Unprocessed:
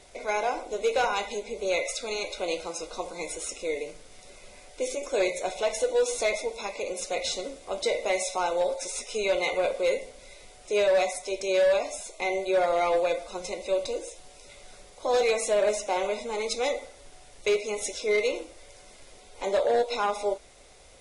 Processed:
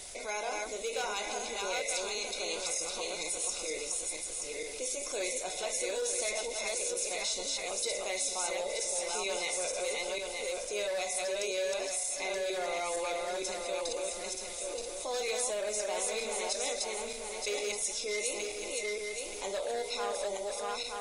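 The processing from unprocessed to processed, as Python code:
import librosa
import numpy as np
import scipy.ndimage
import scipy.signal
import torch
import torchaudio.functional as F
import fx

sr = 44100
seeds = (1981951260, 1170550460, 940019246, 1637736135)

y = fx.reverse_delay_fb(x, sr, ms=463, feedback_pct=48, wet_db=-2)
y = F.preemphasis(torch.from_numpy(y), 0.8).numpy()
y = fx.env_flatten(y, sr, amount_pct=50)
y = y * librosa.db_to_amplitude(-1.0)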